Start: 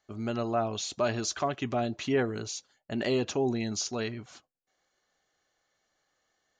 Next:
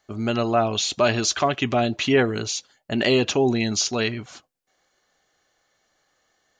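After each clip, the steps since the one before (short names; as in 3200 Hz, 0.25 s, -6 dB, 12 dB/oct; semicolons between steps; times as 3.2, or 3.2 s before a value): dynamic EQ 2900 Hz, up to +6 dB, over -51 dBFS, Q 1.1; gain +8 dB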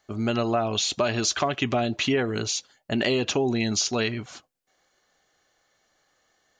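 compressor, threshold -20 dBFS, peak gain reduction 7 dB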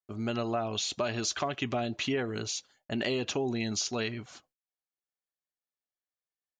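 gate -60 dBFS, range -29 dB; gain -7 dB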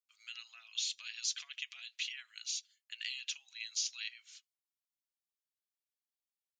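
inverse Chebyshev high-pass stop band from 390 Hz, stop band 80 dB; gain -3 dB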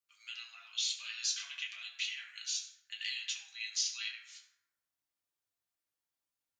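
reverb RT60 1.0 s, pre-delay 5 ms, DRR -3 dB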